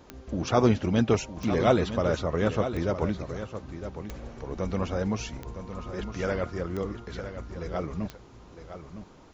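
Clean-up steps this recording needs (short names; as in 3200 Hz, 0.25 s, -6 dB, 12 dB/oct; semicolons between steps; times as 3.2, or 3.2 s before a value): de-click; expander -39 dBFS, range -21 dB; inverse comb 0.96 s -10.5 dB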